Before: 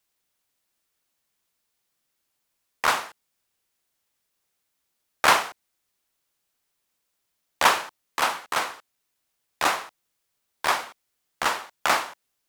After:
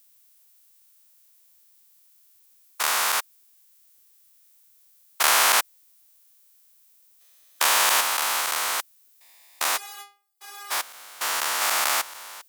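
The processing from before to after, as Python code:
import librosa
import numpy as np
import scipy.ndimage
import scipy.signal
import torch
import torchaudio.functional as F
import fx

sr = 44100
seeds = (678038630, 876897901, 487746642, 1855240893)

y = fx.spec_steps(x, sr, hold_ms=400)
y = fx.riaa(y, sr, side='recording')
y = fx.stiff_resonator(y, sr, f0_hz=400.0, decay_s=0.37, stiffness=0.002, at=(9.76, 10.7), fade=0.02)
y = y * librosa.db_to_amplitude(4.5)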